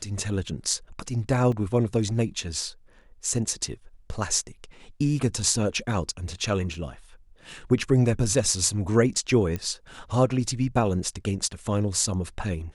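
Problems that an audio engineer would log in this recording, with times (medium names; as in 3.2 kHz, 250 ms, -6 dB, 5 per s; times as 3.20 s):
1.52 s: dropout 3.4 ms
6.74 s: dropout 2.7 ms
9.56 s: pop -17 dBFS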